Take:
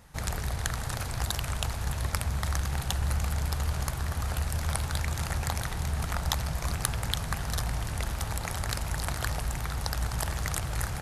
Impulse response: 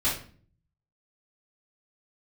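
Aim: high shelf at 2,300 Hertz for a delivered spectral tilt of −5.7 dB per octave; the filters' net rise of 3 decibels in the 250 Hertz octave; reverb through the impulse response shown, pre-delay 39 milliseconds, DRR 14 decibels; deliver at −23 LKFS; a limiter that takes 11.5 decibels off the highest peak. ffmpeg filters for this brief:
-filter_complex "[0:a]equalizer=frequency=250:width_type=o:gain=5,highshelf=frequency=2300:gain=-7.5,alimiter=limit=-23.5dB:level=0:latency=1,asplit=2[link_01][link_02];[1:a]atrim=start_sample=2205,adelay=39[link_03];[link_02][link_03]afir=irnorm=-1:irlink=0,volume=-24dB[link_04];[link_01][link_04]amix=inputs=2:normalize=0,volume=11dB"

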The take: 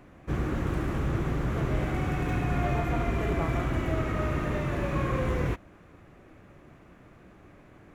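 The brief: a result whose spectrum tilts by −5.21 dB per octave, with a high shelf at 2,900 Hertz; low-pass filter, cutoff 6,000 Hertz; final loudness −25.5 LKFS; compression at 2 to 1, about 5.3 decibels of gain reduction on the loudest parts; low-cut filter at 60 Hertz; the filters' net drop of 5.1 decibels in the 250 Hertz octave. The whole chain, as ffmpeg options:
ffmpeg -i in.wav -af "highpass=60,lowpass=6000,equalizer=frequency=250:width_type=o:gain=-8,highshelf=frequency=2900:gain=9,acompressor=threshold=-35dB:ratio=2,volume=10.5dB" out.wav

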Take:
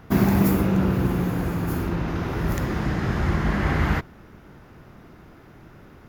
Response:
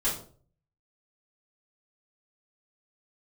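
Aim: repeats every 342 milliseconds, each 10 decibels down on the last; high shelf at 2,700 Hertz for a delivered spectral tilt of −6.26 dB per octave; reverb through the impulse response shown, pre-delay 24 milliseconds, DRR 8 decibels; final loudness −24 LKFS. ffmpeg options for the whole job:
-filter_complex "[0:a]highshelf=frequency=2700:gain=-4,aecho=1:1:342|684|1026|1368:0.316|0.101|0.0324|0.0104,asplit=2[link_01][link_02];[1:a]atrim=start_sample=2205,adelay=24[link_03];[link_02][link_03]afir=irnorm=-1:irlink=0,volume=-16dB[link_04];[link_01][link_04]amix=inputs=2:normalize=0,volume=-1dB"

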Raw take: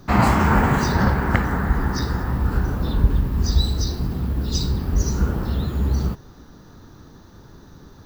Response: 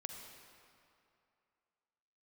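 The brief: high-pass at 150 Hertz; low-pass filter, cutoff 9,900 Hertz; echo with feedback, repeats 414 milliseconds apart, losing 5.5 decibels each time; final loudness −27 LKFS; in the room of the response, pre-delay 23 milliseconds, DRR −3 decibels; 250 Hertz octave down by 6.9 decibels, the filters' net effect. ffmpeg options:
-filter_complex "[0:a]highpass=150,lowpass=9900,equalizer=frequency=250:width_type=o:gain=-8,aecho=1:1:414|828|1242|1656|2070|2484|2898:0.531|0.281|0.149|0.079|0.0419|0.0222|0.0118,asplit=2[link_01][link_02];[1:a]atrim=start_sample=2205,adelay=23[link_03];[link_02][link_03]afir=irnorm=-1:irlink=0,volume=5.5dB[link_04];[link_01][link_04]amix=inputs=2:normalize=0,volume=-6.5dB"

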